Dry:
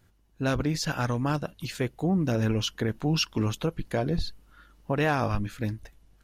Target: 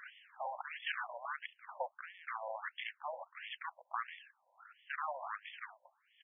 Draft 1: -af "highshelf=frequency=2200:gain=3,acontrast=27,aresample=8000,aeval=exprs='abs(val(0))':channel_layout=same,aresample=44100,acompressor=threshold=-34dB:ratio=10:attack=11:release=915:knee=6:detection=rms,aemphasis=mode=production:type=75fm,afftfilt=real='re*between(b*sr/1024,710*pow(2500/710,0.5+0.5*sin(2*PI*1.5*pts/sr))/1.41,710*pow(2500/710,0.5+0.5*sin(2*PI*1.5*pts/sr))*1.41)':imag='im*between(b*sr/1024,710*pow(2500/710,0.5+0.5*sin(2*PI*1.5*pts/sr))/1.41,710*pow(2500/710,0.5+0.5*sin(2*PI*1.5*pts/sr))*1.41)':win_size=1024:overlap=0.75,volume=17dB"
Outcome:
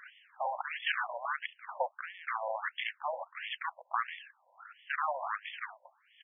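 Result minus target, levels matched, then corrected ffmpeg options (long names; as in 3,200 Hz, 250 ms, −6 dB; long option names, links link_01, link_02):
downward compressor: peak gain reduction −7 dB
-af "highshelf=frequency=2200:gain=3,acontrast=27,aresample=8000,aeval=exprs='abs(val(0))':channel_layout=same,aresample=44100,acompressor=threshold=-41.5dB:ratio=10:attack=11:release=915:knee=6:detection=rms,aemphasis=mode=production:type=75fm,afftfilt=real='re*between(b*sr/1024,710*pow(2500/710,0.5+0.5*sin(2*PI*1.5*pts/sr))/1.41,710*pow(2500/710,0.5+0.5*sin(2*PI*1.5*pts/sr))*1.41)':imag='im*between(b*sr/1024,710*pow(2500/710,0.5+0.5*sin(2*PI*1.5*pts/sr))/1.41,710*pow(2500/710,0.5+0.5*sin(2*PI*1.5*pts/sr))*1.41)':win_size=1024:overlap=0.75,volume=17dB"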